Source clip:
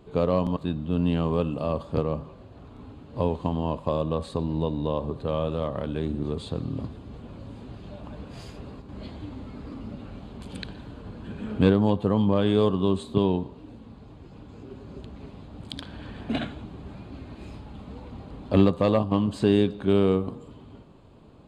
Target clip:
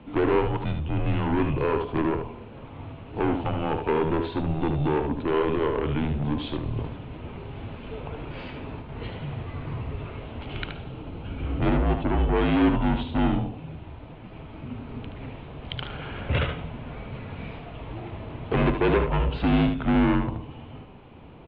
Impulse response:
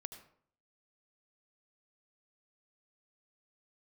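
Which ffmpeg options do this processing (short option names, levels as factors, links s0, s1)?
-filter_complex "[0:a]asettb=1/sr,asplit=3[s0][s1][s2];[s0]atrim=end=10.744[s3];[s1]atrim=start=10.74:end=12.35,asetpts=PTS-STARTPTS,afade=t=in:d=0.004:c=qsin,afade=t=out:st=1.606:d=0.004:c=qsin,equalizer=f=1700:w=1.2:g=-7[s4];[s2]atrim=start=12.346[s5];[s3][s4]acrossfade=d=0.004:c1=hsin:c2=qsin[s6];[s6][s5]acrossfade=d=0.004:c1=qsin:c2=hsin,asoftclip=type=tanh:threshold=0.0596,crystalizer=i=2.5:c=0,asplit=2[s7][s8];[s8]aecho=0:1:75:0.447[s9];[s7][s9]amix=inputs=2:normalize=0,highpass=f=200:t=q:w=0.5412,highpass=f=200:t=q:w=1.307,lowpass=f=3100:t=q:w=0.5176,lowpass=f=3100:t=q:w=0.7071,lowpass=f=3100:t=q:w=1.932,afreqshift=-150,volume=2.37"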